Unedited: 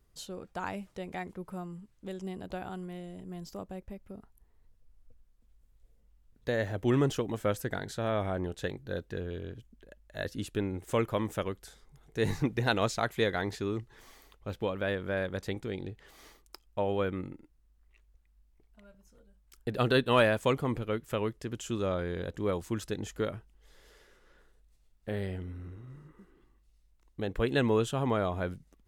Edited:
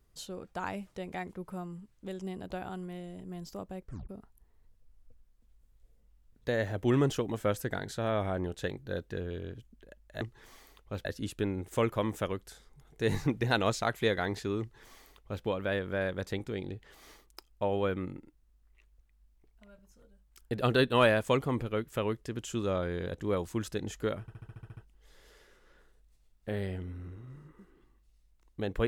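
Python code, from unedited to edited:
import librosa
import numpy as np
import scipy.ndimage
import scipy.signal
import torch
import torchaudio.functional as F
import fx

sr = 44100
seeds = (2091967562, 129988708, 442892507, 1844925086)

y = fx.edit(x, sr, fx.tape_stop(start_s=3.83, length_s=0.26),
    fx.duplicate(start_s=13.76, length_s=0.84, to_s=10.21),
    fx.stutter(start_s=23.37, slice_s=0.07, count=9), tone=tone)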